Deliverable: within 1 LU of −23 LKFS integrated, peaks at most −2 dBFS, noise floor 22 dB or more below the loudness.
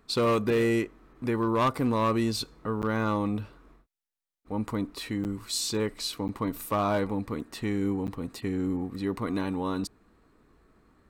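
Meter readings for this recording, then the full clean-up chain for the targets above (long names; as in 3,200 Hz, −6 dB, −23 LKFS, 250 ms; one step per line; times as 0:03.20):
share of clipped samples 1.0%; peaks flattened at −19.5 dBFS; number of dropouts 4; longest dropout 9.0 ms; integrated loudness −29.5 LKFS; sample peak −19.5 dBFS; target loudness −23.0 LKFS
→ clipped peaks rebuilt −19.5 dBFS
repair the gap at 0:02.82/0:05.24/0:06.28/0:08.07, 9 ms
level +6.5 dB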